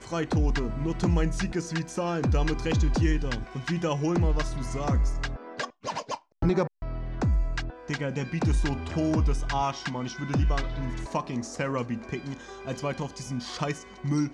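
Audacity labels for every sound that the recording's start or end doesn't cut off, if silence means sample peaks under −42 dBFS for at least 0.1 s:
5.840000	6.170000	sound
6.420000	6.670000	sound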